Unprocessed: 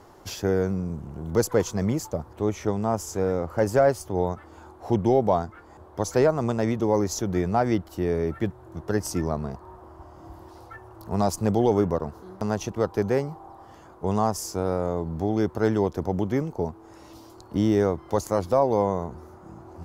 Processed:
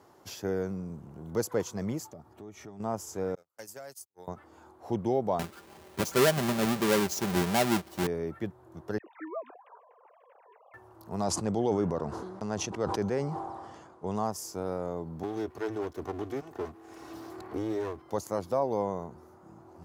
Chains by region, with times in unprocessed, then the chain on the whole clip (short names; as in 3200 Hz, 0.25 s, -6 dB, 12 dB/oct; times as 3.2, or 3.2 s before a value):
2.04–2.8 notch comb 510 Hz + compressor 4:1, threshold -35 dBFS
3.35–4.28 pre-emphasis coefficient 0.9 + gate -42 dBFS, range -48 dB + three-band squash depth 70%
5.39–8.07 half-waves squared off + comb 5.1 ms, depth 44%
8.98–10.74 sine-wave speech + HPF 420 Hz 24 dB/oct + dispersion lows, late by 64 ms, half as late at 1400 Hz
11.24–14.16 LPF 9300 Hz 24 dB/oct + sustainer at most 35 dB/s
15.23–18.02 minimum comb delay 2.7 ms + three-band squash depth 70%
whole clip: HPF 110 Hz 12 dB/oct; high shelf 11000 Hz +3.5 dB; gain -7.5 dB